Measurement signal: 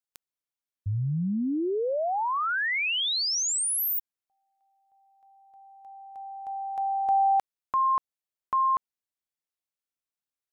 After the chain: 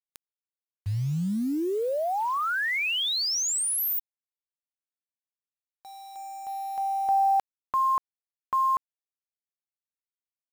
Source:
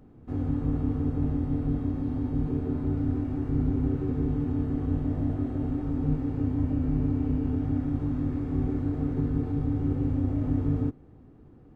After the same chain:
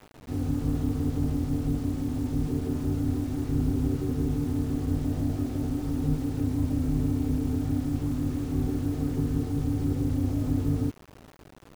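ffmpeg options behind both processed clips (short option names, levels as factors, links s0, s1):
-af "acrusher=bits=7:mix=0:aa=0.000001"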